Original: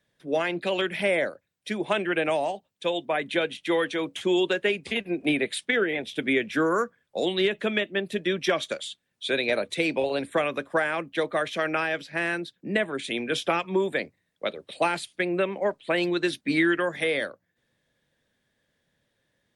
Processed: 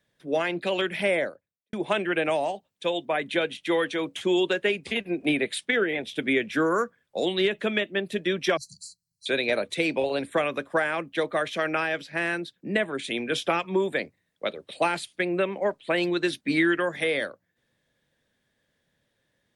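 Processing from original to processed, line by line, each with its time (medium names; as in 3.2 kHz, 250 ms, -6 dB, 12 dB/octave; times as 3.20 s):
1.10–1.73 s: studio fade out
8.57–9.26 s: brick-wall FIR band-stop 190–4000 Hz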